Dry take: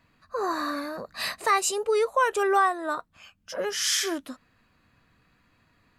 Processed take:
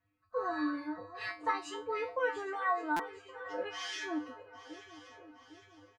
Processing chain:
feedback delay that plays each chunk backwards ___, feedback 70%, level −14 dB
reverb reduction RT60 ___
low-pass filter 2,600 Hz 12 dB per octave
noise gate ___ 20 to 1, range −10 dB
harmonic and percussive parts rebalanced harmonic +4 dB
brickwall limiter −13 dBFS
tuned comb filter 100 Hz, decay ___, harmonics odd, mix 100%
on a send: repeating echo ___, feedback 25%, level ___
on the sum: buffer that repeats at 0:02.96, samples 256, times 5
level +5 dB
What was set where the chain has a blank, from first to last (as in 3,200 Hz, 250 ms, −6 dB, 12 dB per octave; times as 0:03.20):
403 ms, 0.88 s, −54 dBFS, 0.28 s, 1,121 ms, −20 dB